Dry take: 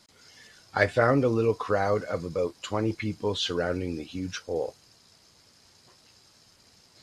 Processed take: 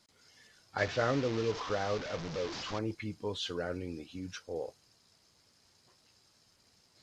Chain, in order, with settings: 0.78–2.79 delta modulation 32 kbps, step -25.5 dBFS; gain -8.5 dB

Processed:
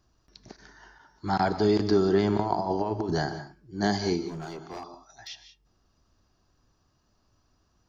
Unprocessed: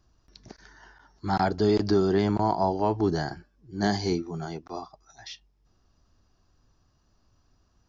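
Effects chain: 2.37–3.26 negative-ratio compressor -26 dBFS, ratio -0.5; low shelf 100 Hz -5.5 dB; non-linear reverb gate 0.21 s rising, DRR 10.5 dB; 4.28–5.28 overloaded stage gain 33.5 dB

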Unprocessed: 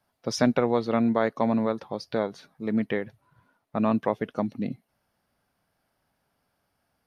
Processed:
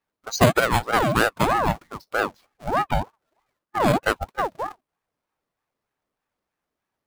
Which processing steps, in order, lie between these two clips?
half-waves squared off; spectral noise reduction 15 dB; ring modulator with a swept carrier 700 Hz, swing 50%, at 3.2 Hz; gain +4.5 dB

